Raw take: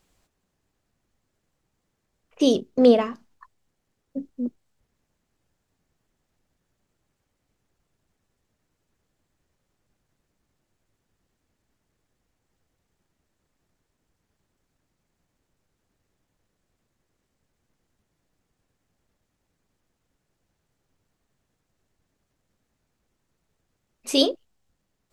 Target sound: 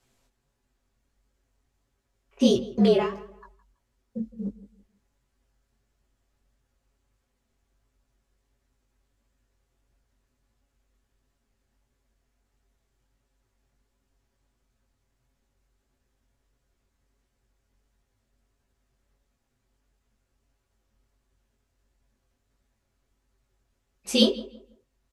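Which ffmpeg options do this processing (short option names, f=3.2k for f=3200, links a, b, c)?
-filter_complex "[0:a]aecho=1:1:6.8:0.79,flanger=delay=16:depth=7.7:speed=1.5,afreqshift=-48,asplit=2[a][b];[b]adelay=164,lowpass=f=2.2k:p=1,volume=-17dB,asplit=2[c][d];[d]adelay=164,lowpass=f=2.2k:p=1,volume=0.28,asplit=2[e][f];[f]adelay=164,lowpass=f=2.2k:p=1,volume=0.28[g];[c][e][g]amix=inputs=3:normalize=0[h];[a][h]amix=inputs=2:normalize=0,aresample=32000,aresample=44100"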